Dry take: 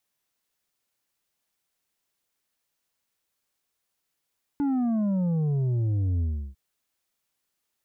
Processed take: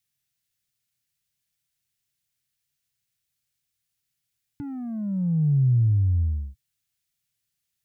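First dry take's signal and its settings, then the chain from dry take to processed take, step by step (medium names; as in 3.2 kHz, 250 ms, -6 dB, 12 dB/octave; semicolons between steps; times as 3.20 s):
sub drop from 290 Hz, over 1.95 s, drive 6 dB, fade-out 0.34 s, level -23 dB
graphic EQ 125/250/500/1000 Hz +12/-8/-10/-12 dB; compression 2.5:1, threshold -19 dBFS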